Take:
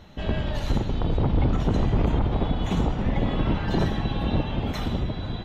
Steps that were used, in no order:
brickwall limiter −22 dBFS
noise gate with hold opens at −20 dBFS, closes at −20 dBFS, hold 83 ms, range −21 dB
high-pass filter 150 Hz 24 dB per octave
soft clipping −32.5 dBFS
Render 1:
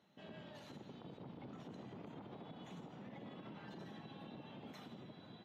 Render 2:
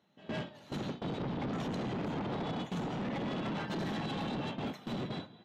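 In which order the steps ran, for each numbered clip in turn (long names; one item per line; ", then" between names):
high-pass filter, then brickwall limiter, then noise gate with hold, then soft clipping
high-pass filter, then noise gate with hold, then brickwall limiter, then soft clipping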